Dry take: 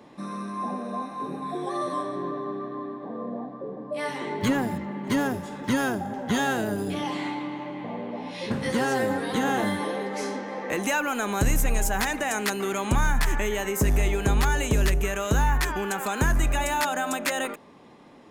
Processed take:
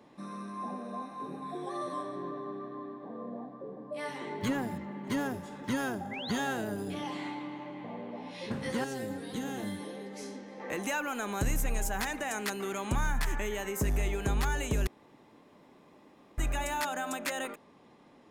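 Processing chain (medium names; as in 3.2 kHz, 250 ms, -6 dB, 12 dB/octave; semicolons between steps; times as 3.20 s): 6.11–6.32 s: painted sound rise 1.9–4.8 kHz -34 dBFS; 8.84–10.60 s: peaking EQ 1.1 kHz -11 dB 2.3 oct; 14.87–16.38 s: room tone; trim -7.5 dB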